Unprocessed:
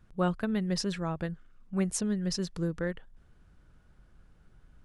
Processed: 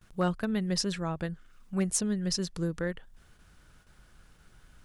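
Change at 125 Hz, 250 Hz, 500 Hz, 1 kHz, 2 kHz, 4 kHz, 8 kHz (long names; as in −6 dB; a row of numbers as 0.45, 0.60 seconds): 0.0, 0.0, 0.0, 0.0, +1.0, +3.5, +4.5 decibels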